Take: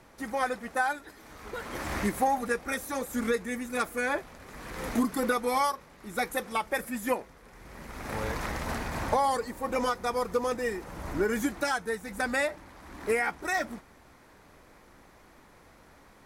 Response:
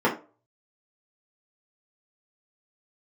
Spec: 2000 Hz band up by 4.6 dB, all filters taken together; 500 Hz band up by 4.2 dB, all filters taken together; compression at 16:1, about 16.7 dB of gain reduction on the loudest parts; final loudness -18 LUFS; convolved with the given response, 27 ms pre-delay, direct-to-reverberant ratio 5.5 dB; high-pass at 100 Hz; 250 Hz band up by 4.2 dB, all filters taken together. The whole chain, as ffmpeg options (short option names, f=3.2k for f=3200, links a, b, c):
-filter_complex "[0:a]highpass=100,equalizer=f=250:t=o:g=4,equalizer=f=500:t=o:g=3.5,equalizer=f=2k:t=o:g=5.5,acompressor=threshold=-35dB:ratio=16,asplit=2[a][b];[1:a]atrim=start_sample=2205,adelay=27[c];[b][c]afir=irnorm=-1:irlink=0,volume=-22dB[d];[a][d]amix=inputs=2:normalize=0,volume=20dB"